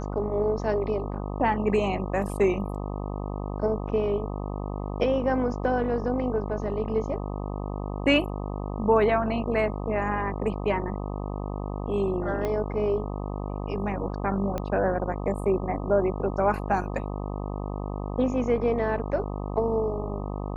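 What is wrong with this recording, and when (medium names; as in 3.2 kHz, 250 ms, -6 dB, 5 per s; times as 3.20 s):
buzz 50 Hz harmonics 25 -32 dBFS
12.45 s: pop -17 dBFS
14.58 s: pop -17 dBFS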